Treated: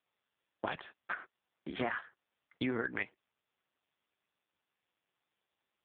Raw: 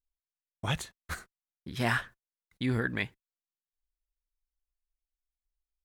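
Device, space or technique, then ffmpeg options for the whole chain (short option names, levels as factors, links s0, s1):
voicemail: -af "highpass=330,lowpass=2700,acompressor=threshold=0.01:ratio=8,volume=3.16" -ar 8000 -c:a libopencore_amrnb -b:a 5150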